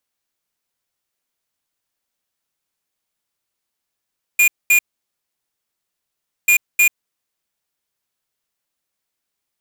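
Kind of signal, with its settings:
beeps in groups square 2,430 Hz, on 0.09 s, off 0.22 s, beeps 2, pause 1.69 s, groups 2, −12 dBFS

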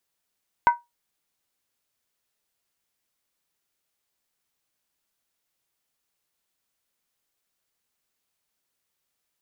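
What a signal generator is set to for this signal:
struck skin, lowest mode 954 Hz, decay 0.19 s, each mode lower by 9.5 dB, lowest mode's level −9.5 dB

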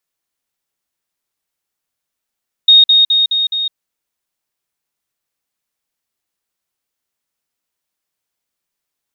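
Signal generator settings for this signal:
level staircase 3,720 Hz −3 dBFS, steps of −3 dB, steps 5, 0.16 s 0.05 s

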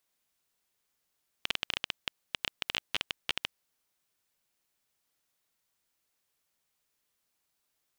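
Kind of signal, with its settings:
Geiger counter clicks 13 per second −11.5 dBFS 2.22 s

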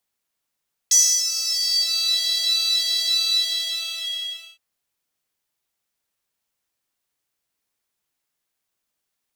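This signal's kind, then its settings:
subtractive patch with pulse-width modulation E5, interval 0 semitones, detune 17 cents, sub −18.5 dB, filter highpass, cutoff 3,100 Hz, Q 10, filter envelope 1 octave, filter decay 1.19 s, attack 7.2 ms, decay 0.32 s, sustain −9.5 dB, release 1.38 s, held 2.29 s, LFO 1.6 Hz, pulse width 45%, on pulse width 9%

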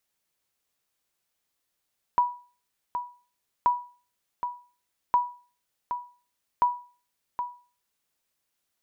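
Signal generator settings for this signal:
ping with an echo 976 Hz, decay 0.38 s, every 1.48 s, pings 4, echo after 0.77 s, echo −9 dB −14 dBFS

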